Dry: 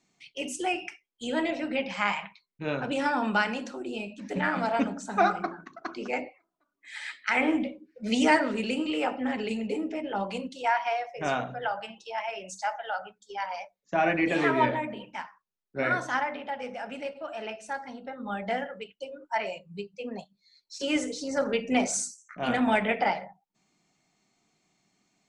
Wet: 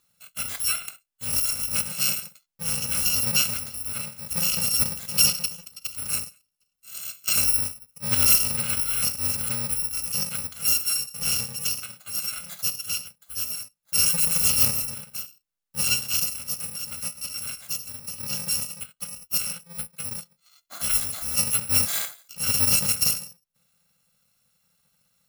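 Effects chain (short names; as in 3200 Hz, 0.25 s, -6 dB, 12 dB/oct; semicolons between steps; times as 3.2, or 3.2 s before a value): FFT order left unsorted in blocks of 128 samples; gain +3.5 dB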